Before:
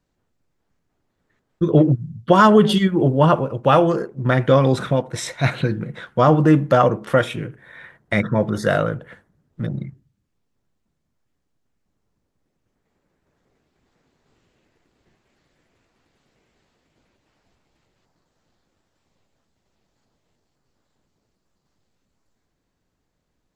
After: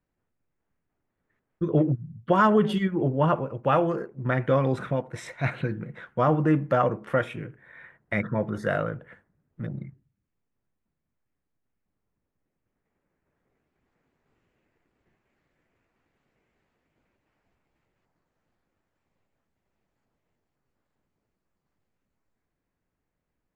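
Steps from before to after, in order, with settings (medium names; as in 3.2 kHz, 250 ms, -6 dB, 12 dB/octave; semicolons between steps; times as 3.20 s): resonant high shelf 3 kHz -7 dB, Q 1.5; trim -8 dB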